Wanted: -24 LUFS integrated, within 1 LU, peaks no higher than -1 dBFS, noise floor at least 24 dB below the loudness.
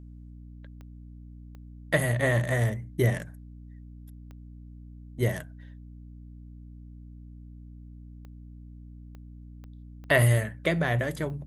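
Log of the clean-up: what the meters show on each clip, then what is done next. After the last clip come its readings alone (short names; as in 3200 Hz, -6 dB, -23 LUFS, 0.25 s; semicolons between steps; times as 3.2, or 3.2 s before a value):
clicks 8; hum 60 Hz; harmonics up to 300 Hz; hum level -43 dBFS; loudness -26.5 LUFS; peak -7.5 dBFS; loudness target -24.0 LUFS
-> de-click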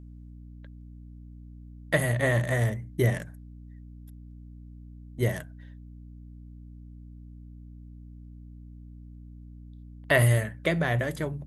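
clicks 0; hum 60 Hz; harmonics up to 300 Hz; hum level -43 dBFS
-> notches 60/120/180/240/300 Hz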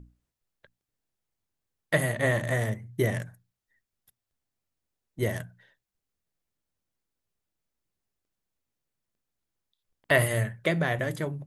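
hum none; loudness -28.0 LUFS; peak -7.5 dBFS; loudness target -24.0 LUFS
-> gain +4 dB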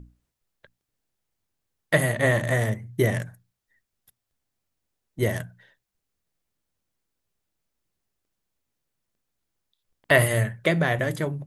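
loudness -24.0 LUFS; peak -3.5 dBFS; noise floor -83 dBFS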